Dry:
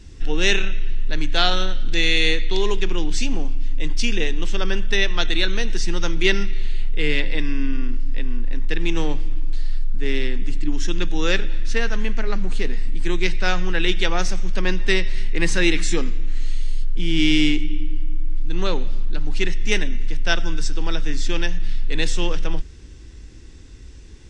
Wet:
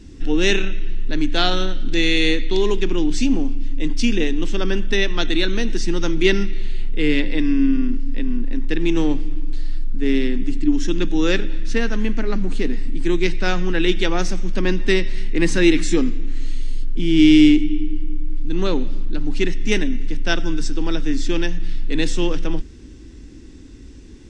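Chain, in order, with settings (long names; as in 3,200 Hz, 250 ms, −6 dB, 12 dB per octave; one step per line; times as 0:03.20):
parametric band 270 Hz +12 dB 0.99 octaves
level −1 dB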